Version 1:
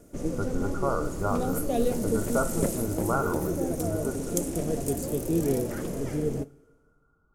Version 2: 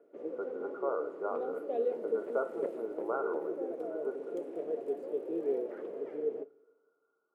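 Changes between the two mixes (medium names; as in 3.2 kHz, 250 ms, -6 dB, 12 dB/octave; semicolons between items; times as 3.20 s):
background: add distance through air 490 m; master: add ladder high-pass 370 Hz, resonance 55%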